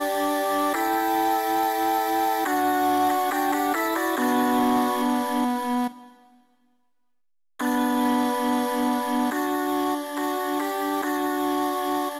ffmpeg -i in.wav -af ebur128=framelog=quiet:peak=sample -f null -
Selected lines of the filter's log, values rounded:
Integrated loudness:
  I:         -23.9 LUFS
  Threshold: -34.2 LUFS
Loudness range:
  LRA:         4.5 LU
  Threshold: -44.4 LUFS
  LRA low:   -27.2 LUFS
  LRA high:  -22.7 LUFS
Sample peak:
  Peak:      -13.9 dBFS